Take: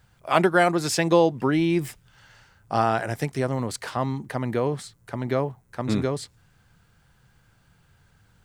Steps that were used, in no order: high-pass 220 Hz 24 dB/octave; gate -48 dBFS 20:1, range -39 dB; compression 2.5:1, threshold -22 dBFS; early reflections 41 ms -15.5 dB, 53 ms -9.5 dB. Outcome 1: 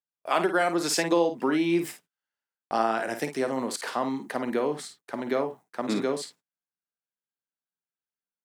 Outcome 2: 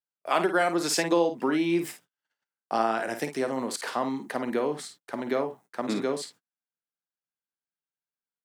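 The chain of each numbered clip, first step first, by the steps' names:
high-pass > compression > gate > early reflections; compression > early reflections > gate > high-pass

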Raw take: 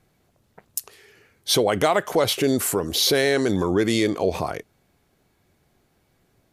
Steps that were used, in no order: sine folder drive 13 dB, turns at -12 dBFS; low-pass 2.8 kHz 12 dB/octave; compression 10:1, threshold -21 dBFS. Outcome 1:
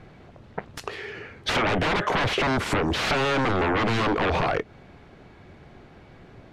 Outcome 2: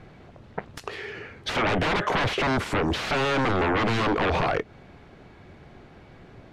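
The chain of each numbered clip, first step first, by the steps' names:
sine folder > low-pass > compression; sine folder > compression > low-pass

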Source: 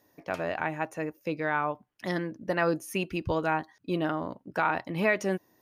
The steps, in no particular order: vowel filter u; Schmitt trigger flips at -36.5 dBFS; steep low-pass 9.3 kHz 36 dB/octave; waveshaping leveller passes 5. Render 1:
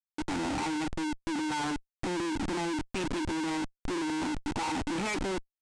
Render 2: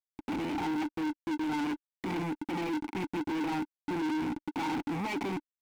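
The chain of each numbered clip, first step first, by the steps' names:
vowel filter > waveshaping leveller > Schmitt trigger > steep low-pass; steep low-pass > Schmitt trigger > vowel filter > waveshaping leveller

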